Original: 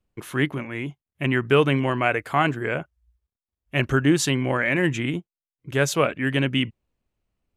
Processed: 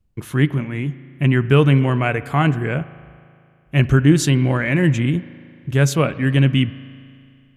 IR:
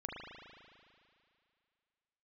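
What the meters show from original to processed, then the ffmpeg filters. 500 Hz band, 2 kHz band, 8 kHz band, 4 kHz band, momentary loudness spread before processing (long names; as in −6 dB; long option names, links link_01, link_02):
+1.5 dB, +0.5 dB, +2.0 dB, +0.5 dB, 11 LU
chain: -filter_complex "[0:a]bass=frequency=250:gain=12,treble=frequency=4000:gain=2,asplit=2[link_01][link_02];[1:a]atrim=start_sample=2205,adelay=13[link_03];[link_02][link_03]afir=irnorm=-1:irlink=0,volume=-15dB[link_04];[link_01][link_04]amix=inputs=2:normalize=0"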